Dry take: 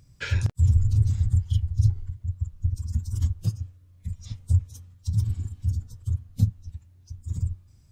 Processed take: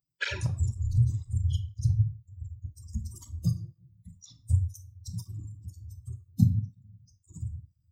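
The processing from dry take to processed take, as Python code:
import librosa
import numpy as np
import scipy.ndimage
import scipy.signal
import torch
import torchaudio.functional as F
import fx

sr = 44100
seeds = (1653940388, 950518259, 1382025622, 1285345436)

y = fx.bin_expand(x, sr, power=2.0)
y = fx.room_shoebox(y, sr, seeds[0], volume_m3=530.0, walls='furnished', distance_m=1.1)
y = fx.flanger_cancel(y, sr, hz=2.0, depth_ms=3.1)
y = y * librosa.db_to_amplitude(6.0)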